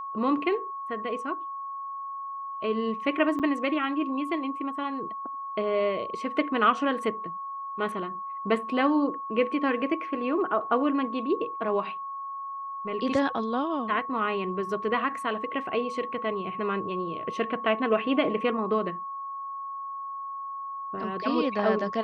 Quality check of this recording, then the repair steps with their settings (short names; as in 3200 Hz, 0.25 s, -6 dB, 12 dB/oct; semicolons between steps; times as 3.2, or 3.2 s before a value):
tone 1100 Hz -33 dBFS
3.39–3.4 gap 7.8 ms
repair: notch 1100 Hz, Q 30; interpolate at 3.39, 7.8 ms